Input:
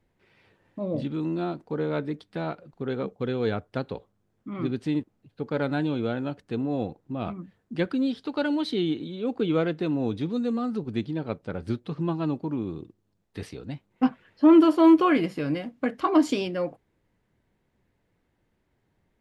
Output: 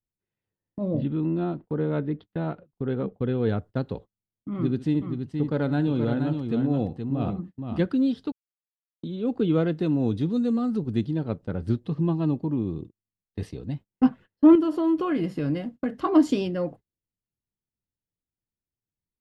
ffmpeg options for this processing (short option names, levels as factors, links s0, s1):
-filter_complex "[0:a]asettb=1/sr,asplit=3[s0][s1][s2];[s0]atrim=end=0.954[s3];[s1]atrim=start=0.95:end=3.49,asetpts=PTS-STARTPTS,afade=t=in:d=0.004:c=qsin,afade=t=out:st=2.536:d=0.004:c=qsin,lowpass=f=3500:w=0.5412,lowpass=f=3500:w=1.3066[s4];[s2]atrim=start=3.486[s5];[s3][s4]acrossfade=d=0.004:c1=hsin:c2=qsin[s6];[s6][s5]acrossfade=d=0.004:c1=qsin:c2=hsin,asettb=1/sr,asplit=3[s7][s8][s9];[s7]atrim=end=4.544[s10];[s8]atrim=start=4.54:end=7.81,asetpts=PTS-STARTPTS,afade=t=in:d=0.004:c=qsin,afade=t=out:st=3.266:d=0.004:c=qsin,aecho=1:1:69|474|475:0.15|0.501|0.133,atrim=end_sample=144207[s11];[s9]atrim=start=7.806[s12];[s10][s11]acrossfade=d=0.004:c1=hsin:c2=qsin[s13];[s13][s12]acrossfade=d=0.004:c1=qsin:c2=hsin,asettb=1/sr,asplit=3[s14][s15][s16];[s14]atrim=end=9.724[s17];[s15]atrim=start=9.72:end=11.24,asetpts=PTS-STARTPTS,afade=t=in:d=0.004:c=qsin,afade=t=out:st=1.516:d=0.004:c=qsin,highshelf=f=5800:g=6.5[s18];[s16]atrim=start=11.236[s19];[s17][s18]acrossfade=d=0.004:c1=hsin:c2=qsin[s20];[s20][s19]acrossfade=d=0.004:c1=qsin:c2=hsin,asettb=1/sr,asplit=3[s21][s22][s23];[s21]atrim=end=11.754[s24];[s22]atrim=start=11.75:end=13.73,asetpts=PTS-STARTPTS,afade=t=in:d=0.004:c=qsin,afade=t=out:st=1.976:d=0.004:c=qsin,bandreject=f=1400:w=6.8[s25];[s23]atrim=start=13.726[s26];[s24][s25]acrossfade=d=0.004:c1=hsin:c2=qsin[s27];[s27][s26]acrossfade=d=0.004:c1=qsin:c2=hsin,asettb=1/sr,asplit=3[s28][s29][s30];[s28]atrim=end=14.554[s31];[s29]atrim=start=14.55:end=16,asetpts=PTS-STARTPTS,afade=t=in:d=0.004:c=qsin,afade=t=out:st=1.446:d=0.004:c=qsin,acompressor=threshold=0.0631:ratio=3:attack=3.2:release=140:knee=1:detection=peak[s32];[s30]atrim=start=15.996[s33];[s31][s32]acrossfade=d=0.004:c1=hsin:c2=qsin[s34];[s34][s33]acrossfade=d=0.004:c1=qsin:c2=hsin,asplit=3[s35][s36][s37];[s35]atrim=end=8.32,asetpts=PTS-STARTPTS,afade=t=out:st=8.316:d=0.004:c=hsin[s38];[s36]atrim=start=8.32:end=9.03,asetpts=PTS-STARTPTS,volume=0[s39];[s37]atrim=start=9.03,asetpts=PTS-STARTPTS,afade=t=in:d=0.004:c=hsin[s40];[s38][s39][s40]concat=n=3:v=0:a=1,agate=range=0.0398:threshold=0.00794:ratio=16:detection=peak,lowshelf=f=320:g=11,bandreject=f=2300:w=11,volume=0.668"